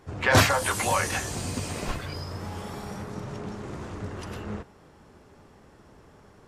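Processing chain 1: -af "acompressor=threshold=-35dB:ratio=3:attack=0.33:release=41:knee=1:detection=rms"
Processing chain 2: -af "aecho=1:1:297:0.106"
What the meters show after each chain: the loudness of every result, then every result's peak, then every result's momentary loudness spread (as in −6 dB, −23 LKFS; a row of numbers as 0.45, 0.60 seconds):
−38.5, −28.0 LKFS; −24.0, −6.0 dBFS; 19, 17 LU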